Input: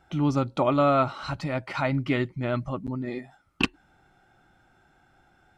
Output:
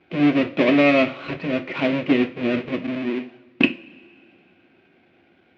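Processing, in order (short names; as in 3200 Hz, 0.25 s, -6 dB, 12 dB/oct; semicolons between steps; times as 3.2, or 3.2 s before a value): half-waves squared off; speaker cabinet 160–3400 Hz, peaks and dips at 230 Hz +5 dB, 340 Hz +9 dB, 540 Hz +5 dB, 850 Hz -9 dB, 1300 Hz -6 dB, 2400 Hz +9 dB; two-slope reverb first 0.31 s, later 2.4 s, from -22 dB, DRR 6 dB; gain -1.5 dB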